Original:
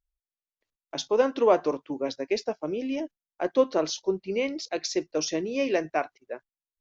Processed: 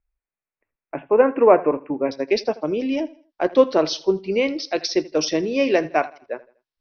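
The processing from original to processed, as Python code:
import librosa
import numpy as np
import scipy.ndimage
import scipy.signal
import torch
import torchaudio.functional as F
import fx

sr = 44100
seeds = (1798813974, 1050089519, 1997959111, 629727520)

y = fx.steep_lowpass(x, sr, hz=fx.steps((0.0, 2600.0), (2.11, 5800.0)), slope=96)
y = fx.echo_feedback(y, sr, ms=81, feedback_pct=35, wet_db=-20)
y = y * librosa.db_to_amplitude(7.0)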